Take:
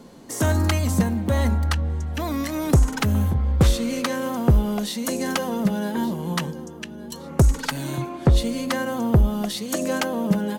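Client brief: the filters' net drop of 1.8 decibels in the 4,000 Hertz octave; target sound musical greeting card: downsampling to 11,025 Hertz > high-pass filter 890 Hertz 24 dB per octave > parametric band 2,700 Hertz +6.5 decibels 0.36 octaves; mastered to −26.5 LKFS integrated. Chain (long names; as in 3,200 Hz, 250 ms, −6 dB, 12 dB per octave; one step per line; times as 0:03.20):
parametric band 4,000 Hz −5 dB
downsampling to 11,025 Hz
high-pass filter 890 Hz 24 dB per octave
parametric band 2,700 Hz +6.5 dB 0.36 octaves
level +7.5 dB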